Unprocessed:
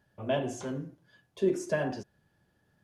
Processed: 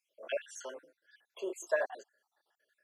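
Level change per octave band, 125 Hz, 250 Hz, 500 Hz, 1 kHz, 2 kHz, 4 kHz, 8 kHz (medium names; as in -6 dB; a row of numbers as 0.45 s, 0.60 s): under -40 dB, -17.0 dB, -5.0 dB, -5.0 dB, 0.0 dB, -5.5 dB, -1.5 dB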